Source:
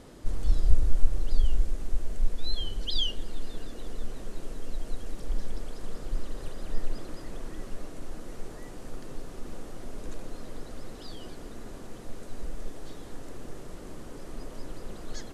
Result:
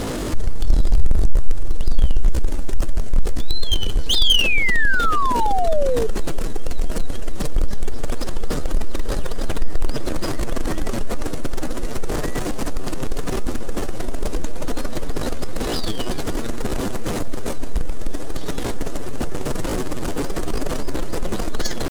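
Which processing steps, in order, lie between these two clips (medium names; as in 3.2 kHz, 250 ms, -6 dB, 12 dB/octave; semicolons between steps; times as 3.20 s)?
power-law waveshaper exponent 0.5; tempo 0.7×; painted sound fall, 4.15–6.07 s, 430–3700 Hz -24 dBFS; trim +3 dB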